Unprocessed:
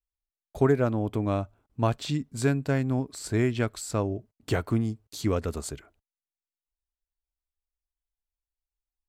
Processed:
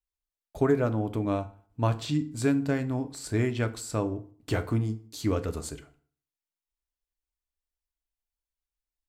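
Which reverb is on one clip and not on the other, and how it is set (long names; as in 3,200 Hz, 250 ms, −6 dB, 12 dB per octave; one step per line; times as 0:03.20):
feedback delay network reverb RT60 0.48 s, low-frequency decay 1.1×, high-frequency decay 0.75×, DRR 8.5 dB
level −2 dB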